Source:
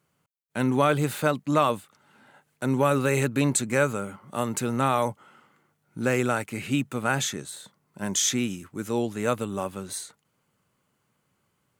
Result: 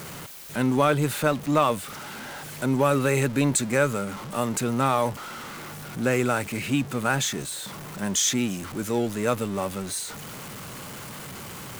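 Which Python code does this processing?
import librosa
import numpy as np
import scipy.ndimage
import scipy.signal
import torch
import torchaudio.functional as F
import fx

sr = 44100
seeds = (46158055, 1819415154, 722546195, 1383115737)

y = x + 0.5 * 10.0 ** (-32.5 / 20.0) * np.sign(x)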